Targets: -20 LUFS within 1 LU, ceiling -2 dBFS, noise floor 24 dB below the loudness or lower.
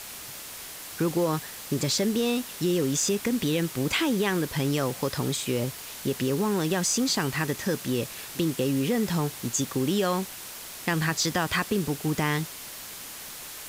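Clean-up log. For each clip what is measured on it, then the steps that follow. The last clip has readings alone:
noise floor -41 dBFS; noise floor target -51 dBFS; loudness -27.0 LUFS; peak level -12.5 dBFS; loudness target -20.0 LUFS
-> noise reduction 10 dB, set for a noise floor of -41 dBFS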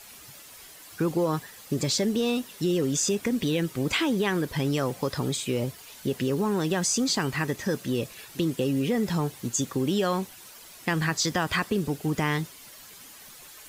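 noise floor -48 dBFS; noise floor target -51 dBFS
-> noise reduction 6 dB, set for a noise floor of -48 dBFS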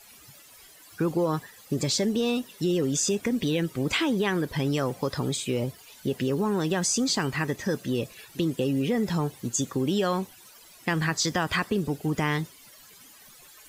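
noise floor -52 dBFS; loudness -27.0 LUFS; peak level -13.0 dBFS; loudness target -20.0 LUFS
-> trim +7 dB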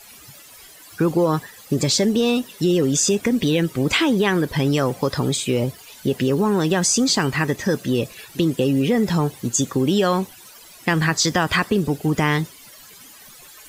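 loudness -20.0 LUFS; peak level -6.0 dBFS; noise floor -45 dBFS

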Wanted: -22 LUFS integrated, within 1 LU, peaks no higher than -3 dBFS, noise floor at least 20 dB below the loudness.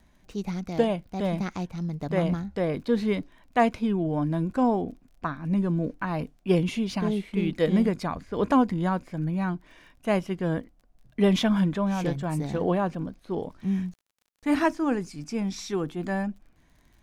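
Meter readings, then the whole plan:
tick rate 32 per s; loudness -27.5 LUFS; peak level -9.0 dBFS; loudness target -22.0 LUFS
-> de-click; trim +5.5 dB

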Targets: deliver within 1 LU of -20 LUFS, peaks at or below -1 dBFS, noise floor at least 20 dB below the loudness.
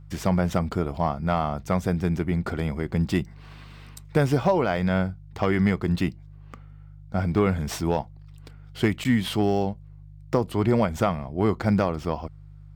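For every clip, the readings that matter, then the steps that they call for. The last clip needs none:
dropouts 1; longest dropout 9.4 ms; hum 50 Hz; highest harmonic 150 Hz; hum level -43 dBFS; loudness -25.0 LUFS; peak level -9.5 dBFS; loudness target -20.0 LUFS
-> interpolate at 9.04 s, 9.4 ms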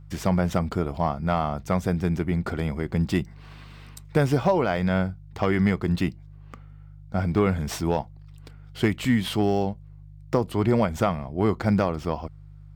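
dropouts 0; hum 50 Hz; highest harmonic 150 Hz; hum level -43 dBFS
-> de-hum 50 Hz, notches 3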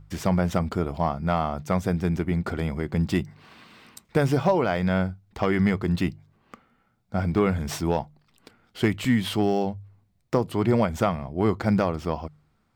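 hum not found; loudness -25.5 LUFS; peak level -9.5 dBFS; loudness target -20.0 LUFS
-> trim +5.5 dB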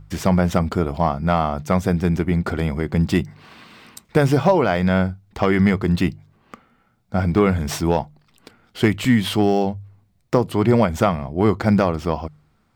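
loudness -20.0 LUFS; peak level -4.0 dBFS; noise floor -62 dBFS

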